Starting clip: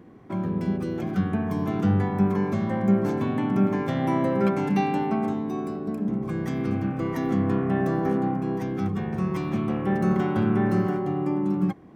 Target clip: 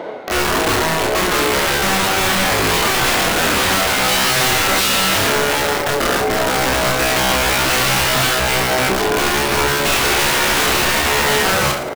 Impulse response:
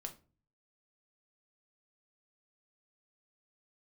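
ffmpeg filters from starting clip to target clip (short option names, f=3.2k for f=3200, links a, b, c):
-filter_complex "[0:a]tiltshelf=f=940:g=3.5,areverse,acompressor=mode=upward:threshold=-22dB:ratio=2.5,areverse,asetrate=85689,aresample=44100,atempo=0.514651,asplit=2[a][b];[b]highpass=f=720:p=1,volume=18dB,asoftclip=type=tanh:threshold=-7dB[c];[a][c]amix=inputs=2:normalize=0,lowpass=f=4k:p=1,volume=-6dB,aeval=exprs='(mod(5.01*val(0)+1,2)-1)/5.01':c=same,asplit=2[d][e];[e]aecho=0:1:30|67.5|114.4|173|246.2:0.631|0.398|0.251|0.158|0.1[f];[d][f]amix=inputs=2:normalize=0"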